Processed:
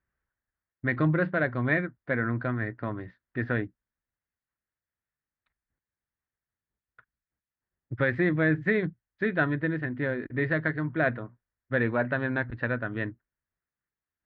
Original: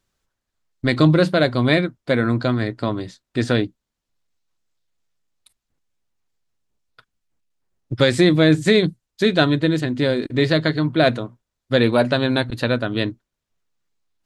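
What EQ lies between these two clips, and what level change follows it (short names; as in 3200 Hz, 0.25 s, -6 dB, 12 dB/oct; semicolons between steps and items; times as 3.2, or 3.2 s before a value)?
HPF 47 Hz; ladder low-pass 2000 Hz, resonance 60%; low shelf 80 Hz +12 dB; -1.5 dB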